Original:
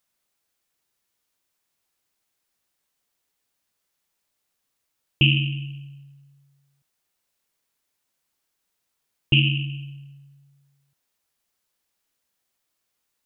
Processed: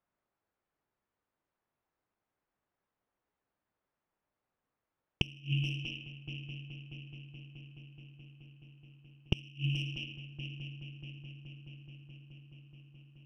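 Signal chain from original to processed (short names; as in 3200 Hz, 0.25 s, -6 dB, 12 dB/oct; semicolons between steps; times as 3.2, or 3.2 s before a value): one diode to ground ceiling -14.5 dBFS; multi-head echo 0.213 s, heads second and third, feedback 75%, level -20 dB; low-pass opened by the level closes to 1300 Hz, open at -28 dBFS; flipped gate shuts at -14 dBFS, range -30 dB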